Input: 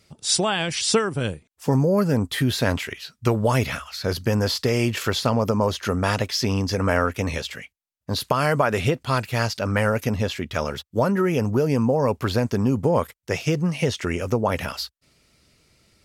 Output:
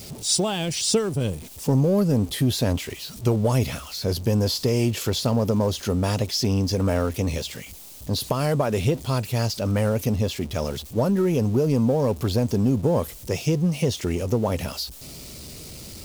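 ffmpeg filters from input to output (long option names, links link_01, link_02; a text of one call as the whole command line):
ffmpeg -i in.wav -filter_complex "[0:a]aeval=exprs='val(0)+0.5*0.0224*sgn(val(0))':channel_layout=same,equalizer=frequency=1600:width=0.82:gain=-12.5,asplit=2[link_01][link_02];[link_02]asoftclip=type=hard:threshold=-18.5dB,volume=-11dB[link_03];[link_01][link_03]amix=inputs=2:normalize=0,volume=-1.5dB" out.wav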